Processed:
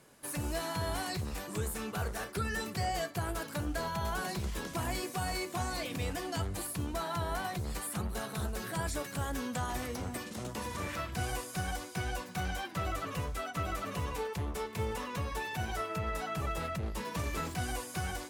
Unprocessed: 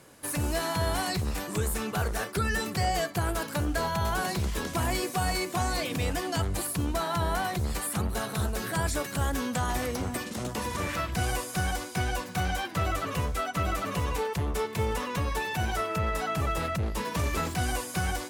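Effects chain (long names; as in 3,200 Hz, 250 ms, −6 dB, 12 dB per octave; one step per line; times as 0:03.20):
flanger 0.24 Hz, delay 4.6 ms, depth 5.9 ms, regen −73%
level −2 dB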